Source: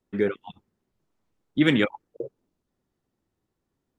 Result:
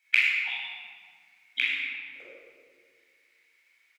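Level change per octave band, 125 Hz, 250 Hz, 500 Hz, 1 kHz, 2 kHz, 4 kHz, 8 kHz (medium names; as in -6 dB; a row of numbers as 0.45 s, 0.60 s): under -40 dB, -36.0 dB, -27.5 dB, -9.5 dB, +6.5 dB, +2.0 dB, no reading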